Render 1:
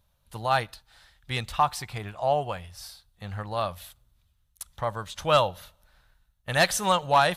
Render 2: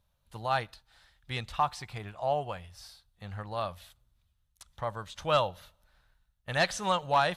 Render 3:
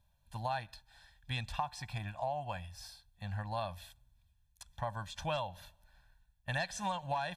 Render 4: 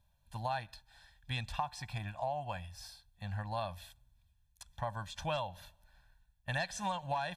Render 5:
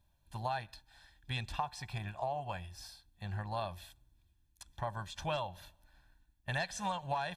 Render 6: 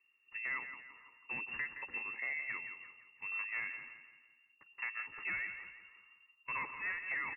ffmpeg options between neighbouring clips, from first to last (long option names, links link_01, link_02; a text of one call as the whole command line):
ffmpeg -i in.wav -filter_complex "[0:a]acrossover=split=8200[link_01][link_02];[link_02]acompressor=threshold=-51dB:ratio=4:attack=1:release=60[link_03];[link_01][link_03]amix=inputs=2:normalize=0,highshelf=frequency=9200:gain=-5,volume=-5dB" out.wav
ffmpeg -i in.wav -af "aecho=1:1:1.2:0.9,acompressor=threshold=-29dB:ratio=12,volume=-3dB" out.wav
ffmpeg -i in.wav -af anull out.wav
ffmpeg -i in.wav -af "tremolo=f=270:d=0.261,volume=1dB" out.wav
ffmpeg -i in.wav -filter_complex "[0:a]asoftclip=type=hard:threshold=-32dB,asplit=2[link_01][link_02];[link_02]aecho=0:1:169|338|507|676|845:0.316|0.136|0.0585|0.0251|0.0108[link_03];[link_01][link_03]amix=inputs=2:normalize=0,lowpass=frequency=2400:width_type=q:width=0.5098,lowpass=frequency=2400:width_type=q:width=0.6013,lowpass=frequency=2400:width_type=q:width=0.9,lowpass=frequency=2400:width_type=q:width=2.563,afreqshift=-2800,volume=-1.5dB" out.wav